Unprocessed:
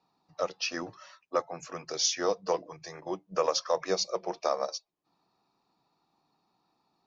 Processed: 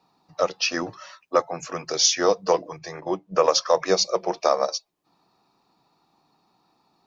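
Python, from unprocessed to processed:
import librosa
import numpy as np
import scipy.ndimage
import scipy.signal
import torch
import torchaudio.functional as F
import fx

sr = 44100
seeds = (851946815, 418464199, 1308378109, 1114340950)

y = fx.high_shelf(x, sr, hz=6000.0, db=-9.5, at=(2.78, 3.48))
y = F.gain(torch.from_numpy(y), 8.5).numpy()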